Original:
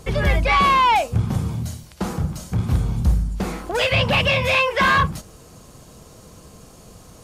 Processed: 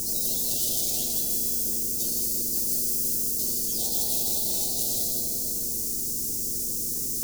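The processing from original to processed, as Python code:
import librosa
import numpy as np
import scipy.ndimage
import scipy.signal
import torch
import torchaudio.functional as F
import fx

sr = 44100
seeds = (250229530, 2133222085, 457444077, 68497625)

p1 = fx.octave_mirror(x, sr, pivot_hz=1500.0)
p2 = fx.peak_eq(p1, sr, hz=1700.0, db=-9.0, octaves=0.31)
p3 = fx.rider(p2, sr, range_db=4, speed_s=2.0)
p4 = p2 + F.gain(torch.from_numpy(p3), 1.5).numpy()
p5 = fx.rev_fdn(p4, sr, rt60_s=2.9, lf_ratio=1.0, hf_ratio=1.0, size_ms=28.0, drr_db=6.5)
p6 = 10.0 ** (-11.0 / 20.0) * (np.abs((p5 / 10.0 ** (-11.0 / 20.0) + 3.0) % 4.0 - 2.0) - 1.0)
p7 = fx.comb_fb(p6, sr, f0_hz=120.0, decay_s=0.21, harmonics='all', damping=0.0, mix_pct=90)
p8 = fx.dmg_noise_colour(p7, sr, seeds[0], colour='pink', level_db=-42.0)
p9 = scipy.signal.sosfilt(scipy.signal.ellip(3, 1.0, 70, [330.0, 6400.0], 'bandstop', fs=sr, output='sos'), p8)
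p10 = fx.high_shelf(p9, sr, hz=5200.0, db=11.0)
p11 = p10 + fx.echo_single(p10, sr, ms=158, db=-7.0, dry=0)
p12 = fx.spectral_comp(p11, sr, ratio=4.0)
y = F.gain(torch.from_numpy(p12), -3.0).numpy()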